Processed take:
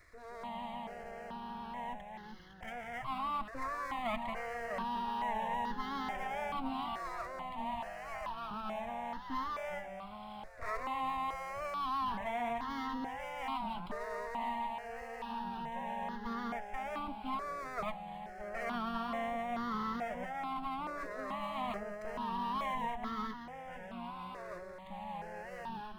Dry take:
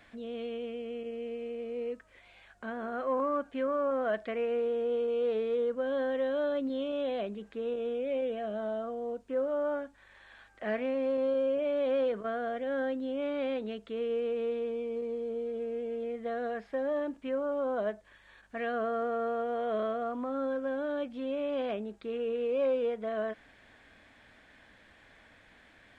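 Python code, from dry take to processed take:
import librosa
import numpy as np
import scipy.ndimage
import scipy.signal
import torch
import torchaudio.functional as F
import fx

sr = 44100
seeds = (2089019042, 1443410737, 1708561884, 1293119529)

y = fx.lower_of_two(x, sr, delay_ms=0.98)
y = fx.cheby1_bandstop(y, sr, low_hz=160.0, high_hz=620.0, order=5, at=(6.88, 8.51))
y = fx.echo_pitch(y, sr, ms=154, semitones=-2, count=3, db_per_echo=-6.0)
y = fx.phaser_held(y, sr, hz=2.3, low_hz=840.0, high_hz=2400.0)
y = y * 10.0 ** (1.5 / 20.0)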